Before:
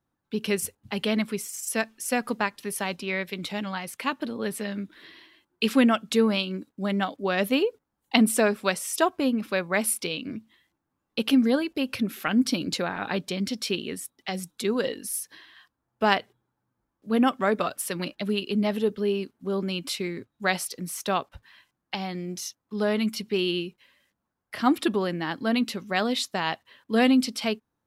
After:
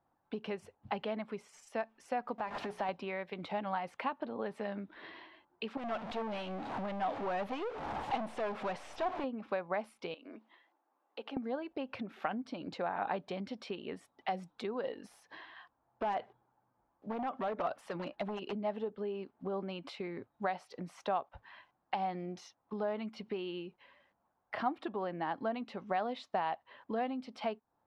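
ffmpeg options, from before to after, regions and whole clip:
-filter_complex "[0:a]asettb=1/sr,asplit=3[a][b][c];[a]atrim=end=2.384[d];[b]atrim=start=2.38:end=2.89,asetpts=PTS-STARTPTS,afade=t=in:d=0.004:c=qsin,afade=t=out:st=0.506:d=0.004:c=qsin,aeval=exprs='val(0)+0.5*0.0251*sgn(val(0))':c=same,bandreject=f=60:t=h:w=6,bandreject=f=120:t=h:w=6,bandreject=f=180:t=h:w=6,bandreject=f=240:t=h:w=6,bandreject=f=300:t=h:w=6,bandreject=f=360:t=h:w=6,bandreject=f=420:t=h:w=6,acompressor=threshold=-31dB:ratio=4:attack=3.2:release=140:knee=1:detection=peak[e];[c]atrim=start=2.886[f];[d][e]acrossfade=d=0.004:c1=hsin:c2=qsin[g];[g][f]acrossfade=d=0.004:c1=qsin:c2=hsin,asettb=1/sr,asplit=3[h][i][j];[h]atrim=end=5.774[k];[i]atrim=start=5.77:end=9.24,asetpts=PTS-STARTPTS,afade=t=in:d=0.004:c=qsin,afade=t=out:st=3.466:d=0.004:c=qsin,aeval=exprs='val(0)+0.5*0.0251*sgn(val(0))':c=same,equalizer=f=2.9k:t=o:w=2:g=4,aeval=exprs='(tanh(22.4*val(0)+0.5)-tanh(0.5))/22.4':c=same[l];[j]atrim=start=9.236[m];[k][l]acrossfade=d=0.004:c1=hsin:c2=qsin[n];[n][m]acrossfade=d=0.004:c1=qsin:c2=hsin,asettb=1/sr,asplit=3[o][p][q];[o]atrim=end=10.144[r];[p]atrim=start=10.14:end=11.37,asetpts=PTS-STARTPTS,afade=t=in:d=0.004:c=qsin,afade=t=out:st=1.226:d=0.004:c=qsin,highpass=f=300:w=0.5412,highpass=f=300:w=1.3066,acompressor=threshold=-47dB:ratio=2.5:attack=3.2:release=140:knee=1:detection=peak[s];[q]atrim=start=11.366[t];[r][s]acrossfade=d=0.004:c1=hsin:c2=qsin[u];[u][t]acrossfade=d=0.004:c1=qsin:c2=hsin,asettb=1/sr,asplit=3[v][w][x];[v]atrim=end=15.004[y];[w]atrim=start=15:end=18.53,asetpts=PTS-STARTPTS,afade=t=in:d=0.004:c=qsin,afade=t=out:st=3.526:d=0.004:c=qsin,acompressor=threshold=-26dB:ratio=6:attack=3.2:release=140:knee=1:detection=peak,aeval=exprs='0.0501*(abs(mod(val(0)/0.0501+3,4)-2)-1)':c=same[z];[x]atrim=start=18.526[aa];[y][z]acrossfade=d=0.004:c1=hsin:c2=qsin[ab];[ab][aa]acrossfade=d=0.004:c1=qsin:c2=hsin,acompressor=threshold=-37dB:ratio=6,lowpass=3k,equalizer=f=770:w=1.1:g=14.5,volume=-3.5dB"

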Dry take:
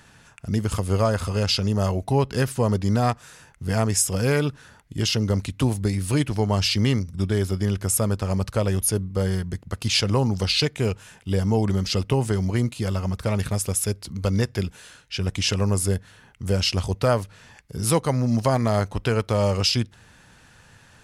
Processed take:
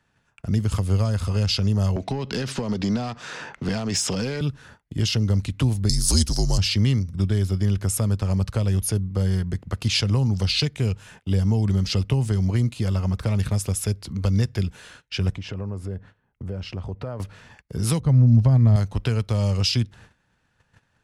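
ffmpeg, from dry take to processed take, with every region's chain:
-filter_complex "[0:a]asettb=1/sr,asplit=3[a][b][c];[a]atrim=end=1.964[d];[b]atrim=start=1.96:end=4.41,asetpts=PTS-STARTPTS,afade=t=in:d=0.004:c=qsin,afade=t=out:st=2.446:d=0.004:c=qsin,acrossover=split=190 6400:gain=0.0891 1 0.0794[e][f][g];[e][f][g]amix=inputs=3:normalize=0,acompressor=threshold=-28dB:ratio=10:attack=3.2:release=140:knee=1:detection=peak,aeval=exprs='0.2*sin(PI/2*2.82*val(0)/0.2)':c=same[h];[c]atrim=start=4.406[i];[d][h]acrossfade=d=0.004:c1=hsin:c2=qsin[j];[j][i]acrossfade=d=0.004:c1=qsin:c2=hsin,asettb=1/sr,asplit=3[k][l][m];[k]atrim=end=5.894[n];[l]atrim=start=5.89:end=6.58,asetpts=PTS-STARTPTS,afade=t=in:d=0.004:c=qsin,afade=t=out:st=0.686:d=0.004:c=qsin,highshelf=f=3.7k:t=q:w=3:g=13.5,afreqshift=-63[o];[m]atrim=start=6.576[p];[n][o]acrossfade=d=0.004:c1=hsin:c2=qsin[q];[q][p]acrossfade=d=0.004:c1=qsin:c2=hsin,asettb=1/sr,asplit=3[r][s][t];[r]atrim=end=15.354[u];[s]atrim=start=15.35:end=17.2,asetpts=PTS-STARTPTS,afade=t=in:d=0.004:c=qsin,afade=t=out:st=1.846:d=0.004:c=qsin,lowpass=f=1.1k:p=1,acompressor=threshold=-34dB:ratio=3:attack=3.2:release=140:knee=1:detection=peak[v];[t]atrim=start=17.196[w];[u][v]acrossfade=d=0.004:c1=hsin:c2=qsin[x];[x][w]acrossfade=d=0.004:c1=qsin:c2=hsin,asettb=1/sr,asplit=3[y][z][aa];[y]atrim=end=18.004[ab];[z]atrim=start=18:end=18.76,asetpts=PTS-STARTPTS,afade=t=in:d=0.004:c=qsin,afade=t=out:st=0.756:d=0.004:c=qsin,lowpass=f=1.2k:p=1,lowshelf=f=160:g=11[ac];[aa]atrim=start=18.756[ad];[ab][ac]acrossfade=d=0.004:c1=hsin:c2=qsin[ae];[ae][ad]acrossfade=d=0.004:c1=qsin:c2=hsin,agate=range=-19dB:threshold=-48dB:ratio=16:detection=peak,highshelf=f=5.3k:g=-10,acrossover=split=200|3000[af][ag][ah];[ag]acompressor=threshold=-34dB:ratio=6[ai];[af][ai][ah]amix=inputs=3:normalize=0,volume=3.5dB"

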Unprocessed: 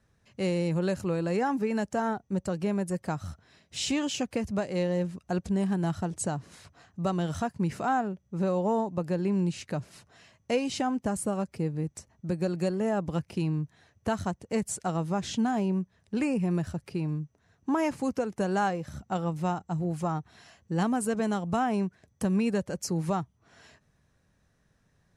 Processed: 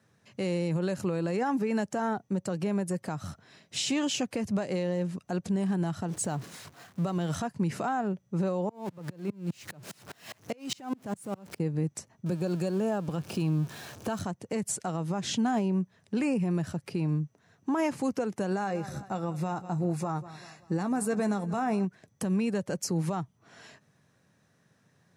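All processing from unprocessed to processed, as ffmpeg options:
-filter_complex "[0:a]asettb=1/sr,asplit=3[a][b][c];[a]atrim=end=6.084[d];[b]atrim=start=6.08:end=7.35,asetpts=PTS-STARTPTS,afade=t=in:d=0.004:c=qsin,afade=t=out:st=1.266:d=0.004:c=qsin,aeval=exprs='val(0)+0.5*0.00562*sgn(val(0))':c=same,agate=range=-33dB:threshold=-43dB:ratio=3:release=100:detection=peak[e];[c]atrim=start=7.346[f];[d][e]acrossfade=d=0.004:c1=hsin:c2=qsin[g];[g][f]acrossfade=d=0.004:c1=qsin:c2=hsin,asettb=1/sr,asplit=3[h][i][j];[h]atrim=end=8.694[k];[i]atrim=start=8.69:end=11.6,asetpts=PTS-STARTPTS,afade=t=in:d=0.004:c=qsin,afade=t=out:st=2.906:d=0.004:c=qsin,aeval=exprs='val(0)+0.5*0.0133*sgn(val(0))':c=same,acompressor=threshold=-27dB:ratio=6:attack=3.2:release=140:knee=1:detection=peak,aeval=exprs='val(0)*pow(10,-32*if(lt(mod(-4.9*n/s,1),2*abs(-4.9)/1000),1-mod(-4.9*n/s,1)/(2*abs(-4.9)/1000),(mod(-4.9*n/s,1)-2*abs(-4.9)/1000)/(1-2*abs(-4.9)/1000))/20)':c=same[l];[j]atrim=start=11.596[m];[k][l]acrossfade=d=0.004:c1=hsin:c2=qsin[n];[n][m]acrossfade=d=0.004:c1=qsin:c2=hsin,asettb=1/sr,asplit=3[o][p][q];[o]atrim=end=12.264[r];[p]atrim=start=12.26:end=14.23,asetpts=PTS-STARTPTS,afade=t=in:d=0.004:c=qsin,afade=t=out:st=1.966:d=0.004:c=qsin,aeval=exprs='val(0)+0.5*0.0075*sgn(val(0))':c=same,bandreject=f=2k:w=6.5[s];[q]atrim=start=14.226[t];[r][s]acrossfade=d=0.004:c1=hsin:c2=qsin[u];[u][t]acrossfade=d=0.004:c1=qsin:c2=hsin,asettb=1/sr,asplit=3[v][w][x];[v]atrim=end=18.504[y];[w]atrim=start=18.5:end=21.85,asetpts=PTS-STARTPTS,afade=t=in:d=0.004:c=qsin,afade=t=out:st=3.346:d=0.004:c=qsin,asuperstop=centerf=3100:order=8:qfactor=6.7,asplit=2[z][aa];[aa]adelay=15,volume=-11.5dB[ab];[z][ab]amix=inputs=2:normalize=0,atrim=end_sample=147735,aecho=1:1:191|382|573:0.0891|0.041|0.0189,atrim=end_sample=147735[ac];[x]atrim=start=21.846[ad];[y][ac]acrossfade=d=0.004:c1=hsin:c2=qsin[ae];[ae][ad]acrossfade=d=0.004:c1=qsin:c2=hsin,highpass=f=110:w=0.5412,highpass=f=110:w=1.3066,alimiter=level_in=1dB:limit=-24dB:level=0:latency=1:release=123,volume=-1dB,volume=4dB"

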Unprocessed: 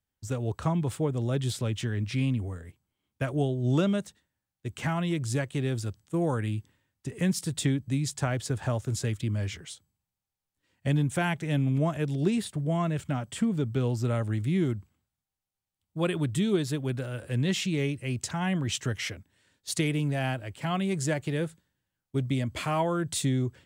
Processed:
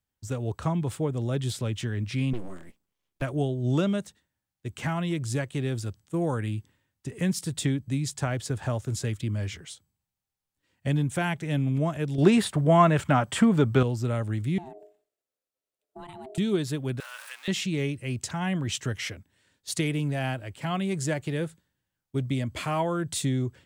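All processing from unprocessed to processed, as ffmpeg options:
-filter_complex "[0:a]asettb=1/sr,asplit=3[a][b][c];[a]atrim=end=2.334[d];[b]atrim=start=2.33:end=3.22,asetpts=PTS-STARTPTS,afade=t=in:d=0.004:c=qsin,afade=t=out:st=0.886:d=0.004:c=qsin,equalizer=f=320:w=5.6:g=-5,aeval=exprs='abs(val(0))':c=same[e];[c]atrim=start=3.216[f];[d][e]acrossfade=d=0.004:c1=hsin:c2=qsin[g];[g][f]acrossfade=d=0.004:c1=qsin:c2=hsin,asettb=1/sr,asplit=3[h][i][j];[h]atrim=end=12.184[k];[i]atrim=start=12.18:end=13.83,asetpts=PTS-STARTPTS,afade=t=in:d=0.004:c=qsin,afade=t=out:st=1.646:d=0.004:c=qsin,equalizer=f=1.1k:t=o:w=2.3:g=9.5,acontrast=27,highpass=41[l];[j]atrim=start=13.826[m];[k][l]acrossfade=d=0.004:c1=hsin:c2=qsin[n];[n][m]acrossfade=d=0.004:c1=qsin:c2=hsin,asettb=1/sr,asplit=3[o][p][q];[o]atrim=end=14.584[r];[p]atrim=start=14.58:end=16.38,asetpts=PTS-STARTPTS,afade=t=in:d=0.004:c=qsin,afade=t=out:st=1.796:d=0.004:c=qsin,bandreject=f=50:t=h:w=6,bandreject=f=100:t=h:w=6,bandreject=f=150:t=h:w=6,bandreject=f=200:t=h:w=6,acompressor=threshold=-36dB:ratio=10:attack=3.2:release=140:knee=1:detection=peak,aeval=exprs='val(0)*sin(2*PI*520*n/s)':c=same[s];[q]atrim=start=16.376[t];[r][s]acrossfade=d=0.004:c1=hsin:c2=qsin[u];[u][t]acrossfade=d=0.004:c1=qsin:c2=hsin,asettb=1/sr,asplit=3[v][w][x];[v]atrim=end=17.004[y];[w]atrim=start=17:end=17.48,asetpts=PTS-STARTPTS,afade=t=in:d=0.004:c=qsin,afade=t=out:st=0.476:d=0.004:c=qsin,aeval=exprs='val(0)+0.5*0.015*sgn(val(0))':c=same,highpass=f=1k:w=0.5412,highpass=f=1k:w=1.3066[z];[x]atrim=start=17.476[aa];[y][z]acrossfade=d=0.004:c1=hsin:c2=qsin[ab];[ab][aa]acrossfade=d=0.004:c1=qsin:c2=hsin"

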